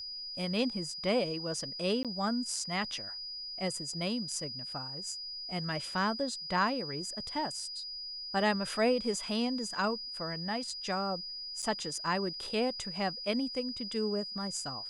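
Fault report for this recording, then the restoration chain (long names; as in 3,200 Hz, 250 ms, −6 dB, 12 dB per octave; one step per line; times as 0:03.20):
whistle 4,900 Hz −39 dBFS
0:02.03–0:02.05: drop-out 17 ms
0:11.62–0:11.63: drop-out 7 ms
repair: notch filter 4,900 Hz, Q 30
repair the gap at 0:02.03, 17 ms
repair the gap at 0:11.62, 7 ms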